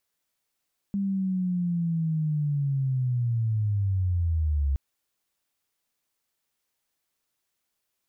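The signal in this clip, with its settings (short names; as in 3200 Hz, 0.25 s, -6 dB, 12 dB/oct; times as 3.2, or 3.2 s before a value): chirp linear 200 Hz -> 67 Hz -24 dBFS -> -21.5 dBFS 3.82 s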